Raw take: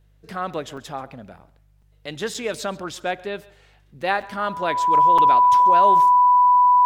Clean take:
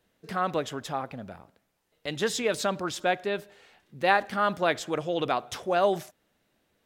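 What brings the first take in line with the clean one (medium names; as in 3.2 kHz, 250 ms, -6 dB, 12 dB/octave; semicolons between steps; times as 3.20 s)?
de-hum 49.9 Hz, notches 3; band-stop 990 Hz, Q 30; interpolate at 0.77/1.82/2.34/4.22/5.18 s, 4.7 ms; inverse comb 135 ms -21.5 dB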